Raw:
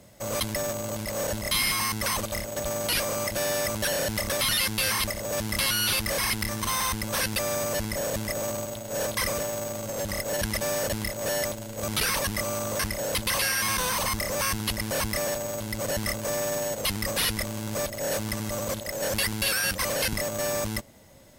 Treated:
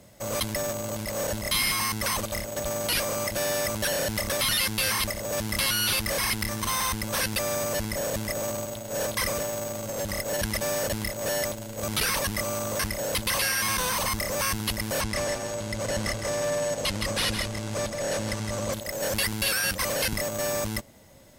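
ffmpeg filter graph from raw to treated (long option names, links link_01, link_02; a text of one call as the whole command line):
ffmpeg -i in.wav -filter_complex "[0:a]asettb=1/sr,asplit=3[link_01][link_02][link_03];[link_01]atrim=end=15.014[link_04];[link_02]atrim=start=15.01:end=18.73,asetpts=PTS-STARTPTS,afade=type=in:duration=0.004:curve=qsin,afade=type=out:start_time=3.716:duration=0.004:curve=qsin,lowpass=8600,aecho=1:1:160:0.422,atrim=end_sample=164052[link_05];[link_03]atrim=start=18.726[link_06];[link_04][link_05]acrossfade=duration=0.004:curve1=hsin:curve2=qsin[link_07];[link_07][link_06]acrossfade=duration=0.004:curve1=qsin:curve2=hsin" out.wav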